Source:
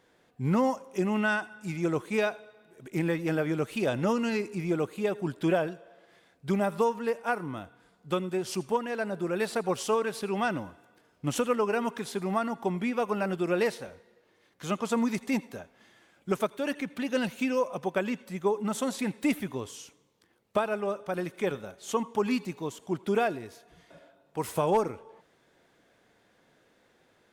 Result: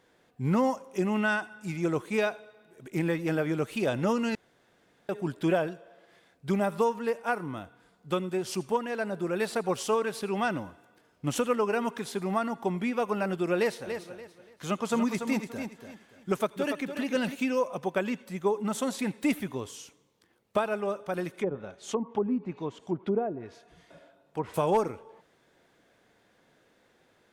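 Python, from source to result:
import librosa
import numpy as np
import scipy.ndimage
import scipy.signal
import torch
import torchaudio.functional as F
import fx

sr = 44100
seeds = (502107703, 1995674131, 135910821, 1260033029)

y = fx.echo_feedback(x, sr, ms=288, feedback_pct=27, wet_db=-8.0, at=(13.86, 17.34), fade=0.02)
y = fx.env_lowpass_down(y, sr, base_hz=580.0, full_db=-24.5, at=(21.33, 24.54))
y = fx.edit(y, sr, fx.room_tone_fill(start_s=4.35, length_s=0.74), tone=tone)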